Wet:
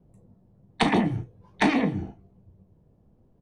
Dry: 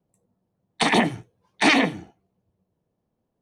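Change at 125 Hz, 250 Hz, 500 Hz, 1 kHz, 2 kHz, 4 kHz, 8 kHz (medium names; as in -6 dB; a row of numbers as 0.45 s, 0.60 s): +3.5 dB, -0.5 dB, -3.0 dB, -4.0 dB, -7.5 dB, -8.5 dB, -11.0 dB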